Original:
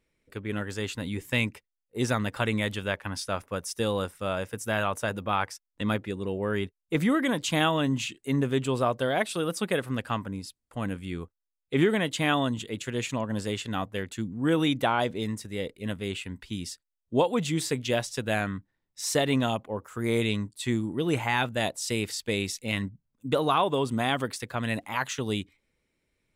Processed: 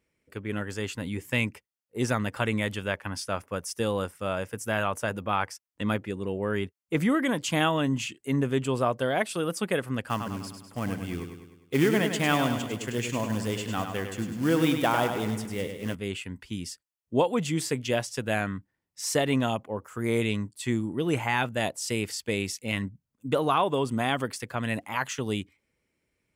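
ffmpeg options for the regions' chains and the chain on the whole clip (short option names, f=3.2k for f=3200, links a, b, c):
-filter_complex "[0:a]asettb=1/sr,asplit=3[a][b][c];[a]atrim=end=10.084[d];[b]atrim=start=10.08:end=15.95,asetpts=PTS-STARTPTS,afade=t=in:d=0.004:c=qsin,afade=t=out:st=5.866:d=0.004:c=qsin,acrusher=bits=4:mode=log:mix=0:aa=0.000001,aecho=1:1:101|202|303|404|505|606:0.447|0.237|0.125|0.0665|0.0352|0.0187,atrim=end_sample=258867[e];[c]atrim=start=15.946[f];[d][e]acrossfade=d=0.004:c1=hsin:c2=qsin[g];[g][f]acrossfade=d=0.004:c1=qsin:c2=hsin,highpass=52,equalizer=f=3.8k:w=7.7:g=-8.5"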